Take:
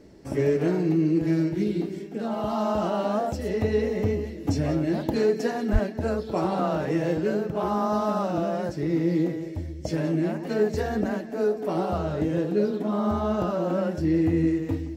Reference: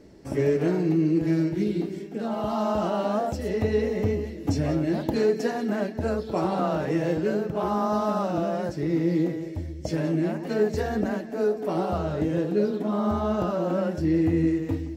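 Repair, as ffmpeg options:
-filter_complex "[0:a]asplit=3[a][b][c];[a]afade=t=out:st=5.72:d=0.02[d];[b]highpass=f=140:w=0.5412,highpass=f=140:w=1.3066,afade=t=in:st=5.72:d=0.02,afade=t=out:st=5.84:d=0.02[e];[c]afade=t=in:st=5.84:d=0.02[f];[d][e][f]amix=inputs=3:normalize=0"

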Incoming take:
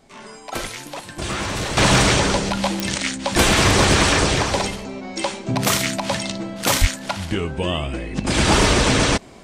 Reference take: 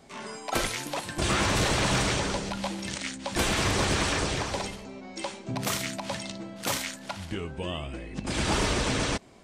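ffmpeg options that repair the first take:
-filter_complex "[0:a]adeclick=t=4,asplit=3[a][b][c];[a]afade=t=out:st=6.8:d=0.02[d];[b]highpass=f=140:w=0.5412,highpass=f=140:w=1.3066,afade=t=in:st=6.8:d=0.02,afade=t=out:st=6.92:d=0.02[e];[c]afade=t=in:st=6.92:d=0.02[f];[d][e][f]amix=inputs=3:normalize=0,agate=range=-21dB:threshold=-29dB,asetnsamples=n=441:p=0,asendcmd='1.77 volume volume -10.5dB',volume=0dB"

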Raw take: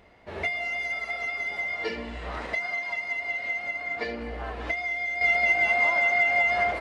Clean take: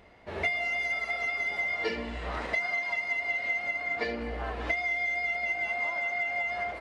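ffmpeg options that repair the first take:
-af "asetnsamples=n=441:p=0,asendcmd='5.21 volume volume -8.5dB',volume=0dB"

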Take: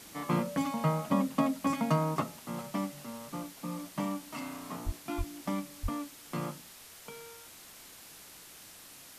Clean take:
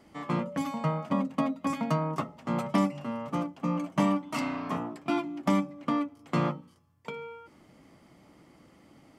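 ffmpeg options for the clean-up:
-filter_complex "[0:a]asplit=3[a][b][c];[a]afade=t=out:st=4.85:d=0.02[d];[b]highpass=f=140:w=0.5412,highpass=f=140:w=1.3066,afade=t=in:st=4.85:d=0.02,afade=t=out:st=4.97:d=0.02[e];[c]afade=t=in:st=4.97:d=0.02[f];[d][e][f]amix=inputs=3:normalize=0,asplit=3[g][h][i];[g]afade=t=out:st=5.17:d=0.02[j];[h]highpass=f=140:w=0.5412,highpass=f=140:w=1.3066,afade=t=in:st=5.17:d=0.02,afade=t=out:st=5.29:d=0.02[k];[i]afade=t=in:st=5.29:d=0.02[l];[j][k][l]amix=inputs=3:normalize=0,asplit=3[m][n][o];[m]afade=t=out:st=5.82:d=0.02[p];[n]highpass=f=140:w=0.5412,highpass=f=140:w=1.3066,afade=t=in:st=5.82:d=0.02,afade=t=out:st=5.94:d=0.02[q];[o]afade=t=in:st=5.94:d=0.02[r];[p][q][r]amix=inputs=3:normalize=0,afwtdn=0.0032,asetnsamples=n=441:p=0,asendcmd='2.39 volume volume 9dB',volume=0dB"

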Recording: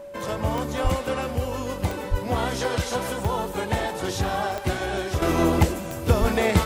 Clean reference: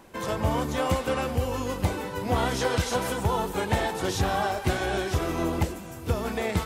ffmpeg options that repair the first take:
-filter_complex "[0:a]adeclick=t=4,bandreject=f=570:w=30,asplit=3[a][b][c];[a]afade=t=out:st=0.83:d=0.02[d];[b]highpass=f=140:w=0.5412,highpass=f=140:w=1.3066,afade=t=in:st=0.83:d=0.02,afade=t=out:st=0.95:d=0.02[e];[c]afade=t=in:st=0.95:d=0.02[f];[d][e][f]amix=inputs=3:normalize=0,asplit=3[g][h][i];[g]afade=t=out:st=2.1:d=0.02[j];[h]highpass=f=140:w=0.5412,highpass=f=140:w=1.3066,afade=t=in:st=2.1:d=0.02,afade=t=out:st=2.22:d=0.02[k];[i]afade=t=in:st=2.22:d=0.02[l];[j][k][l]amix=inputs=3:normalize=0,asplit=3[m][n][o];[m]afade=t=out:st=6.2:d=0.02[p];[n]highpass=f=140:w=0.5412,highpass=f=140:w=1.3066,afade=t=in:st=6.2:d=0.02,afade=t=out:st=6.32:d=0.02[q];[o]afade=t=in:st=6.32:d=0.02[r];[p][q][r]amix=inputs=3:normalize=0,asetnsamples=n=441:p=0,asendcmd='5.22 volume volume -7dB',volume=0dB"

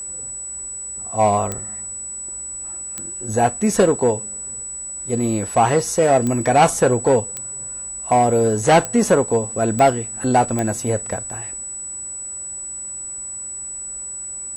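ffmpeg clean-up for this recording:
-af "adeclick=t=4,bandreject=f=7.9k:w=30"

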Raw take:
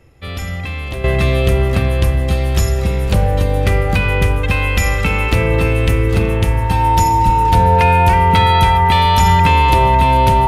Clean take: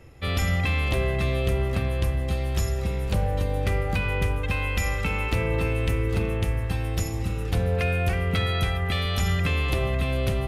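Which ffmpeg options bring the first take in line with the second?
-filter_complex "[0:a]bandreject=f=910:w=30,asplit=3[a][b][c];[a]afade=t=out:st=7.25:d=0.02[d];[b]highpass=f=140:w=0.5412,highpass=f=140:w=1.3066,afade=t=in:st=7.25:d=0.02,afade=t=out:st=7.37:d=0.02[e];[c]afade=t=in:st=7.37:d=0.02[f];[d][e][f]amix=inputs=3:normalize=0,asetnsamples=n=441:p=0,asendcmd='1.04 volume volume -10.5dB',volume=0dB"

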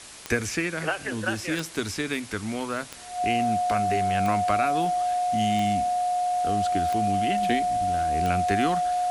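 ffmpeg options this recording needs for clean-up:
-af "adeclick=t=4,bandreject=f=720:w=30,afwtdn=0.0079"

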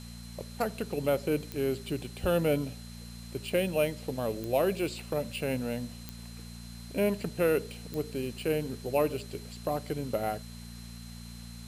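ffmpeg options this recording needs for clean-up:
-af "adeclick=t=4,bandreject=f=58.3:t=h:w=4,bandreject=f=116.6:t=h:w=4,bandreject=f=174.9:t=h:w=4,bandreject=f=233.2:t=h:w=4,bandreject=f=4.1k:w=30,afwtdn=0.0025"

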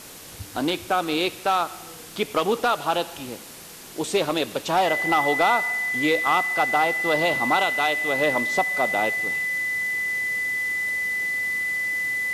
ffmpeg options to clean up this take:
-af "adeclick=t=4,bandreject=f=2k:w=30,afwtdn=0.0089"

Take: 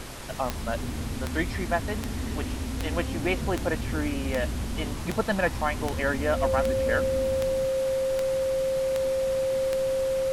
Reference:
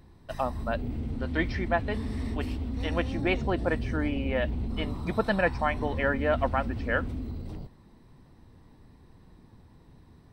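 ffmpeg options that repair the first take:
-af "adeclick=t=4,bandreject=f=129.7:t=h:w=4,bandreject=f=259.4:t=h:w=4,bandreject=f=389.1:t=h:w=4,bandreject=f=518.8:t=h:w=4,bandreject=f=530:w=30,afftdn=nr=22:nf=-33"

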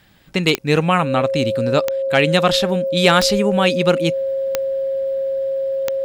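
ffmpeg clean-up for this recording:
-af "adeclick=t=4,bandreject=f=540:w=30"

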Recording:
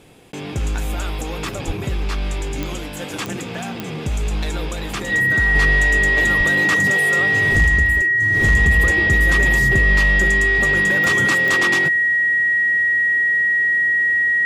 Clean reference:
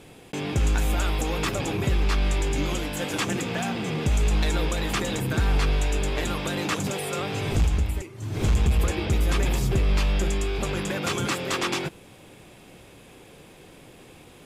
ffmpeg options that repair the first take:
-filter_complex "[0:a]adeclick=t=4,bandreject=f=1.9k:w=30,asplit=3[a][b][c];[a]afade=t=out:st=1.66:d=0.02[d];[b]highpass=f=140:w=0.5412,highpass=f=140:w=1.3066,afade=t=in:st=1.66:d=0.02,afade=t=out:st=1.78:d=0.02[e];[c]afade=t=in:st=1.78:d=0.02[f];[d][e][f]amix=inputs=3:normalize=0,asplit=3[g][h][i];[g]afade=t=out:st=6.37:d=0.02[j];[h]highpass=f=140:w=0.5412,highpass=f=140:w=1.3066,afade=t=in:st=6.37:d=0.02,afade=t=out:st=6.49:d=0.02[k];[i]afade=t=in:st=6.49:d=0.02[l];[j][k][l]amix=inputs=3:normalize=0,asetnsamples=n=441:p=0,asendcmd='5.55 volume volume -4dB',volume=0dB"

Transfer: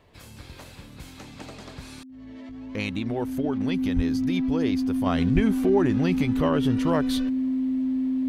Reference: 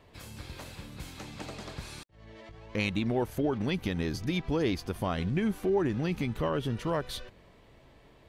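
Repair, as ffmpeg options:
-filter_complex "[0:a]bandreject=f=260:w=30,asplit=3[a][b][c];[a]afade=t=out:st=3.95:d=0.02[d];[b]highpass=f=140:w=0.5412,highpass=f=140:w=1.3066,afade=t=in:st=3.95:d=0.02,afade=t=out:st=4.07:d=0.02[e];[c]afade=t=in:st=4.07:d=0.02[f];[d][e][f]amix=inputs=3:normalize=0,asplit=3[g][h][i];[g]afade=t=out:st=5.34:d=0.02[j];[h]highpass=f=140:w=0.5412,highpass=f=140:w=1.3066,afade=t=in:st=5.34:d=0.02,afade=t=out:st=5.46:d=0.02[k];[i]afade=t=in:st=5.46:d=0.02[l];[j][k][l]amix=inputs=3:normalize=0,asetnsamples=n=441:p=0,asendcmd='5.06 volume volume -5.5dB',volume=0dB"

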